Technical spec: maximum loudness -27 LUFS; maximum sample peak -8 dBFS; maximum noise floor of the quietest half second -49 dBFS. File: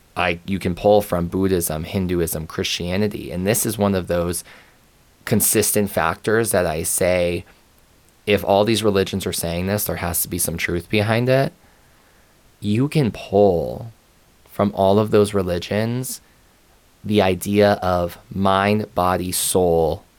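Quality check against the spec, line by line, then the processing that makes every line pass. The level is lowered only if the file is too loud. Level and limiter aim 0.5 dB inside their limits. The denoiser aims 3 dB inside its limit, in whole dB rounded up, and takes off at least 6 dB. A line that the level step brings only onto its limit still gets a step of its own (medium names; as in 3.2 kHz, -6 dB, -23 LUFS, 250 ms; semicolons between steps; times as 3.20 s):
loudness -19.5 LUFS: fail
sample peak -3.5 dBFS: fail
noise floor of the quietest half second -54 dBFS: pass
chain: trim -8 dB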